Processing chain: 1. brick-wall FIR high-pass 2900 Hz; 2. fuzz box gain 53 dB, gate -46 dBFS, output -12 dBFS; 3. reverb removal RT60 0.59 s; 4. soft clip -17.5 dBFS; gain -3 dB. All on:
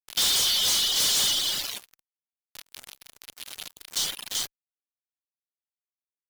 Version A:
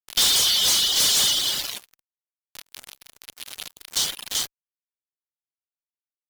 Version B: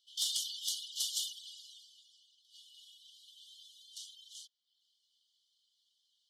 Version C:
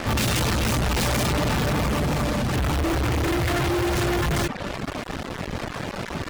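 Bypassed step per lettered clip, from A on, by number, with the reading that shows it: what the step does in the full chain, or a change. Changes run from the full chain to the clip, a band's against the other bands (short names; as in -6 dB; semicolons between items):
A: 4, distortion -16 dB; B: 2, distortion -3 dB; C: 1, 4 kHz band -25.0 dB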